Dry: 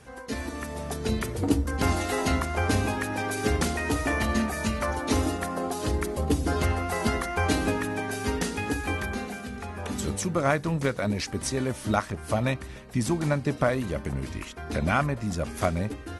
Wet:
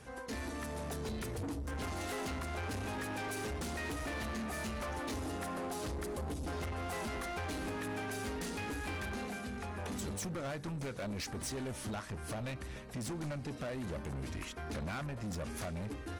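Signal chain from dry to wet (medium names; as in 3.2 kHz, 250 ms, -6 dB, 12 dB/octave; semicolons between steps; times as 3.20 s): compression, threshold -26 dBFS, peak gain reduction 9.5 dB; saturation -33.5 dBFS, distortion -8 dB; trim -2.5 dB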